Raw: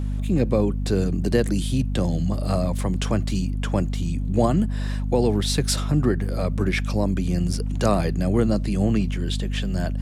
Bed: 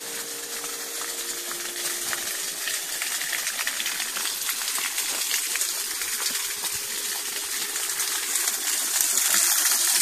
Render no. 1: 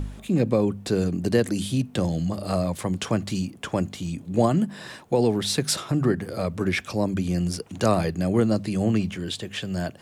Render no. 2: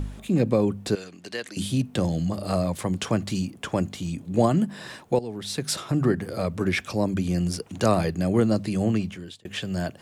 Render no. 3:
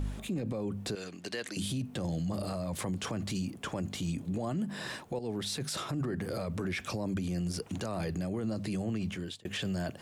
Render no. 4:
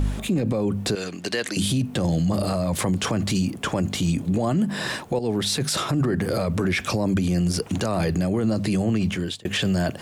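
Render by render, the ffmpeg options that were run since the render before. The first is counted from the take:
-af "bandreject=f=50:t=h:w=4,bandreject=f=100:t=h:w=4,bandreject=f=150:t=h:w=4,bandreject=f=200:t=h:w=4,bandreject=f=250:t=h:w=4"
-filter_complex "[0:a]asettb=1/sr,asplit=3[a][b][c];[a]atrim=end=0.954[d];[b]atrim=start=0.95:end=1.57,asetpts=PTS-STARTPTS,afade=t=in:d=0.004:c=qsin,afade=t=out:st=0.616:d=0.004:c=qsin,bandpass=f=3k:t=q:w=0.7[e];[c]atrim=start=1.566[f];[d][e]acrossfade=d=0.004:c1=hsin:c2=qsin[g];[g][f]acrossfade=d=0.004:c1=qsin:c2=hsin,asplit=3[h][i][j];[h]atrim=end=5.19,asetpts=PTS-STARTPTS,afade=t=out:st=5.186:d=0.004:c=hsin:silence=0.133352[k];[i]atrim=start=5.19:end=9.45,asetpts=PTS-STARTPTS,afade=t=in:d=0.79:silence=0.133352,afade=t=out:st=3.47:d=0.79:c=qsin[l];[j]atrim=start=9.45,asetpts=PTS-STARTPTS,afade=t=in:d=0.004:c=hsin[m];[k][l][m]concat=n=3:v=0:a=1"
-af "acompressor=threshold=-23dB:ratio=6,alimiter=level_in=2.5dB:limit=-24dB:level=0:latency=1:release=19,volume=-2.5dB"
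-af "volume=11.5dB"

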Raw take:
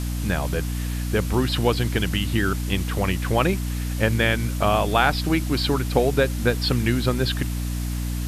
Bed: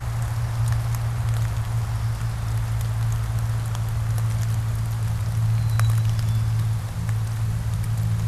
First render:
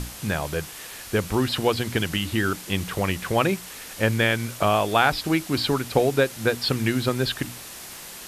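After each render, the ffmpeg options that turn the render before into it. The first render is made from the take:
-af "bandreject=f=60:t=h:w=6,bandreject=f=120:t=h:w=6,bandreject=f=180:t=h:w=6,bandreject=f=240:t=h:w=6,bandreject=f=300:t=h:w=6"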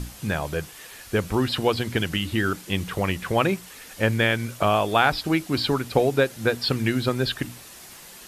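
-af "afftdn=nr=6:nf=-40"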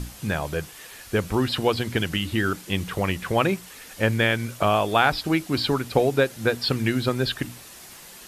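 -af anull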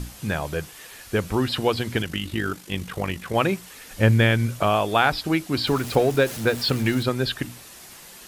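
-filter_complex "[0:a]asettb=1/sr,asplit=3[a][b][c];[a]atrim=end=2.024[d];[b]atrim=start=2.02:end=3.35,asetpts=PTS-STARTPTS,afade=t=in:d=0.004:c=qsin,afade=t=out:st=1.326:d=0.004:c=qsin,tremolo=f=50:d=0.621[e];[c]atrim=start=3.346[f];[d][e]acrossfade=d=0.004:c1=hsin:c2=qsin[g];[g][f]acrossfade=d=0.004:c1=qsin:c2=hsin,asettb=1/sr,asplit=3[h][i][j];[h]atrim=end=3.904[k];[i]atrim=start=3.9:end=4.6,asetpts=PTS-STARTPTS,afade=t=in:d=0.004:c=qsin,afade=t=out:st=0.696:d=0.004:c=qsin,lowshelf=f=190:g=11[l];[j]atrim=start=4.596[m];[k][l]acrossfade=d=0.004:c1=hsin:c2=qsin[n];[n][m]acrossfade=d=0.004:c1=qsin:c2=hsin,asettb=1/sr,asplit=3[o][p][q];[o]atrim=end=5.674[r];[p]atrim=start=5.67:end=7.03,asetpts=PTS-STARTPTS,afade=t=in:d=0.004:c=qsin,afade=t=out:st=1.356:d=0.004:c=qsin,aeval=exprs='val(0)+0.5*0.0282*sgn(val(0))':c=same[s];[q]atrim=start=7.026[t];[r][s]acrossfade=d=0.004:c1=hsin:c2=qsin[u];[u][t]acrossfade=d=0.004:c1=qsin:c2=hsin"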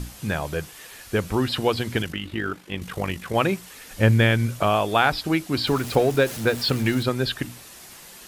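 -filter_complex "[0:a]asettb=1/sr,asplit=3[a][b][c];[a]atrim=end=2.124[d];[b]atrim=start=2.12:end=2.82,asetpts=PTS-STARTPTS,afade=t=in:d=0.004:c=qsin,afade=t=out:st=0.696:d=0.004:c=qsin,bass=f=250:g=-4,treble=f=4k:g=-11[e];[c]atrim=start=2.816[f];[d][e]acrossfade=d=0.004:c1=hsin:c2=qsin[g];[g][f]acrossfade=d=0.004:c1=qsin:c2=hsin"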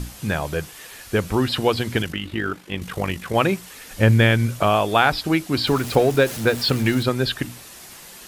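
-af "volume=2.5dB,alimiter=limit=-3dB:level=0:latency=1"

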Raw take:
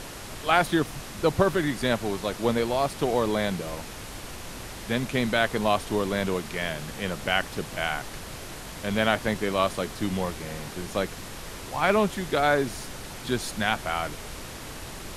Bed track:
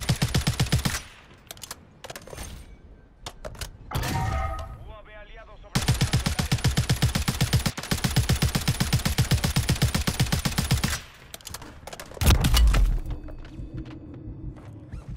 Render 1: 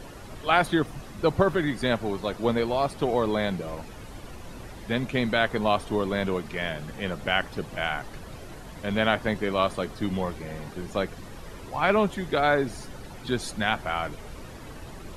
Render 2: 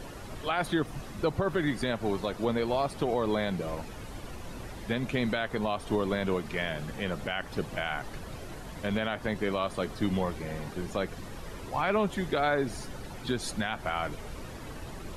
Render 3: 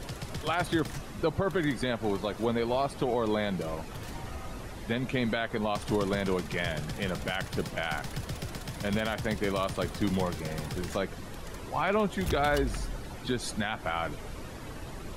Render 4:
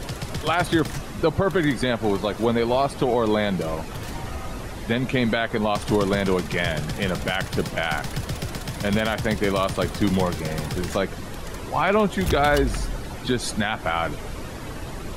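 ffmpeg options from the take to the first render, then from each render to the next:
-af "afftdn=nr=11:nf=-40"
-af "alimiter=limit=-17.5dB:level=0:latency=1:release=146"
-filter_complex "[1:a]volume=-15.5dB[a];[0:a][a]amix=inputs=2:normalize=0"
-af "volume=7.5dB"

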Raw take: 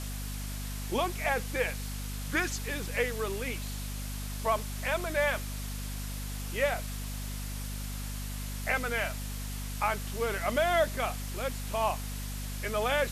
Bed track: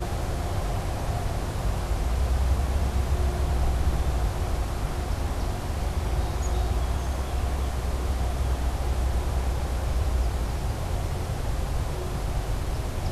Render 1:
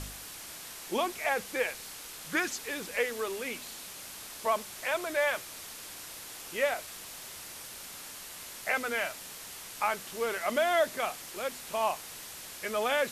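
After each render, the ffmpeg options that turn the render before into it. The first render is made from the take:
-af "bandreject=f=50:t=h:w=4,bandreject=f=100:t=h:w=4,bandreject=f=150:t=h:w=4,bandreject=f=200:t=h:w=4,bandreject=f=250:t=h:w=4"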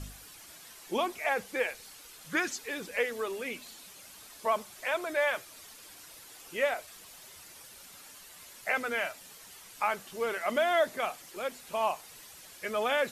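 -af "afftdn=nr=9:nf=-45"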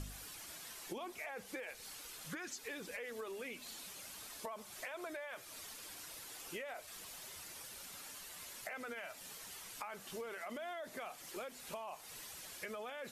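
-af "alimiter=level_in=3dB:limit=-24dB:level=0:latency=1:release=36,volume=-3dB,acompressor=threshold=-42dB:ratio=10"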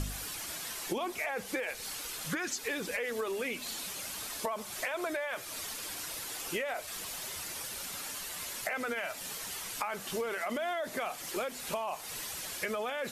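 -af "volume=10.5dB"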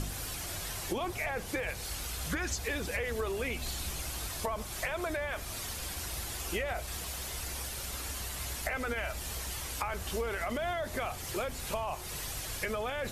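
-filter_complex "[1:a]volume=-16.5dB[a];[0:a][a]amix=inputs=2:normalize=0"

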